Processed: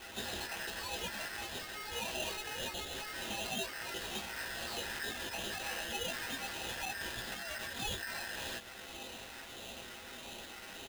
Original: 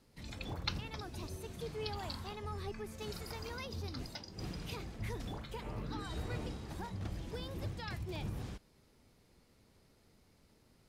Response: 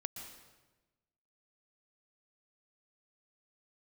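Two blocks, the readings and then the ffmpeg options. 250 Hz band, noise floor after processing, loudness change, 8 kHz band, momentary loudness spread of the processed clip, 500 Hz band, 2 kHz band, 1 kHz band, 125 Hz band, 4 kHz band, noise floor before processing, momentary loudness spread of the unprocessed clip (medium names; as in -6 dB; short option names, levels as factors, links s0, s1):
-3.5 dB, -49 dBFS, +3.5 dB, +13.0 dB, 9 LU, +0.5 dB, +11.0 dB, +4.0 dB, -11.5 dB, +8.0 dB, -68 dBFS, 4 LU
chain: -filter_complex "[0:a]aecho=1:1:6.7:0.92,acompressor=threshold=0.00501:ratio=6,aresample=8000,aresample=44100,acrossover=split=120|3000[s0][s1][s2];[s1]acompressor=threshold=0.002:ratio=6[s3];[s0][s3][s2]amix=inputs=3:normalize=0,acrossover=split=730[s4][s5];[s4]aeval=exprs='val(0)*(1-0.5/2+0.5/2*cos(2*PI*1.6*n/s))':c=same[s6];[s5]aeval=exprs='val(0)*(1-0.5/2-0.5/2*cos(2*PI*1.6*n/s))':c=same[s7];[s6][s7]amix=inputs=2:normalize=0,asplit=2[s8][s9];[s9]highpass=f=720:p=1,volume=25.1,asoftclip=type=tanh:threshold=0.0126[s10];[s8][s10]amix=inputs=2:normalize=0,lowpass=f=1100:p=1,volume=0.501,equalizer=f=125:t=o:w=1:g=-6,equalizer=f=500:t=o:w=1:g=-11,equalizer=f=1000:t=o:w=1:g=8,equalizer=f=2000:t=o:w=1:g=9,flanger=delay=16.5:depth=2.5:speed=0.93,lowshelf=f=160:g=6.5,aeval=exprs='val(0)*sgn(sin(2*PI*1700*n/s))':c=same,volume=2.66"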